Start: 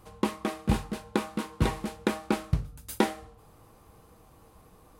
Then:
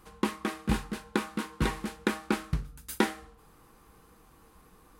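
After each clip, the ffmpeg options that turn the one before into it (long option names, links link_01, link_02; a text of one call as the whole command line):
ffmpeg -i in.wav -af "equalizer=frequency=100:width_type=o:width=0.67:gain=-11,equalizer=frequency=630:width_type=o:width=0.67:gain=-8,equalizer=frequency=1600:width_type=o:width=0.67:gain=4" out.wav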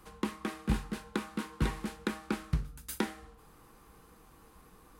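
ffmpeg -i in.wav -filter_complex "[0:a]acrossover=split=180[link_01][link_02];[link_02]acompressor=threshold=-37dB:ratio=2[link_03];[link_01][link_03]amix=inputs=2:normalize=0" out.wav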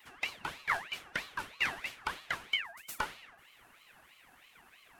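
ffmpeg -i in.wav -af "afftfilt=real='real(if(between(b,1,1008),(2*floor((b-1)/24)+1)*24-b,b),0)':imag='imag(if(between(b,1,1008),(2*floor((b-1)/24)+1)*24-b,b),0)*if(between(b,1,1008),-1,1)':win_size=2048:overlap=0.75,aeval=exprs='val(0)*sin(2*PI*1900*n/s+1900*0.4/3.1*sin(2*PI*3.1*n/s))':channel_layout=same" out.wav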